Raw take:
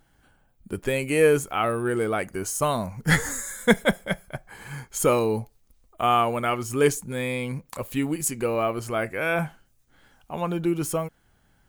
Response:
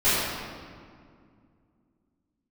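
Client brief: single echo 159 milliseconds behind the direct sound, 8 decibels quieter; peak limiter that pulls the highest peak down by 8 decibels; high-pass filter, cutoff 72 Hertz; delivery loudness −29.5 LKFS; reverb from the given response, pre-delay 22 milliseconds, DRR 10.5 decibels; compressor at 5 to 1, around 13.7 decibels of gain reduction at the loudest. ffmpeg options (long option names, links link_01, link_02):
-filter_complex "[0:a]highpass=72,acompressor=threshold=-29dB:ratio=5,alimiter=level_in=1dB:limit=-24dB:level=0:latency=1,volume=-1dB,aecho=1:1:159:0.398,asplit=2[link_01][link_02];[1:a]atrim=start_sample=2205,adelay=22[link_03];[link_02][link_03]afir=irnorm=-1:irlink=0,volume=-28.5dB[link_04];[link_01][link_04]amix=inputs=2:normalize=0,volume=5dB"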